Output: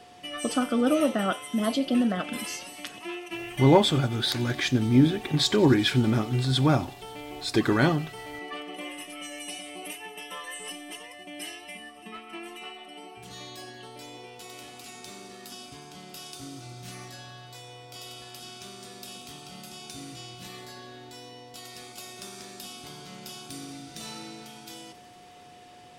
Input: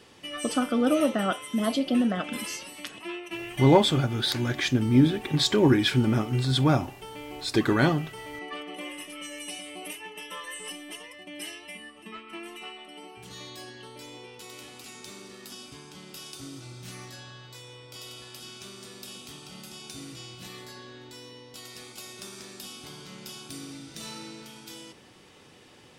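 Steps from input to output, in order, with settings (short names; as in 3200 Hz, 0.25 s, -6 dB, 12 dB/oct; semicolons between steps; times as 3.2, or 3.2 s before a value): whine 720 Hz -50 dBFS; thin delay 91 ms, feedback 84%, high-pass 4400 Hz, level -18.5 dB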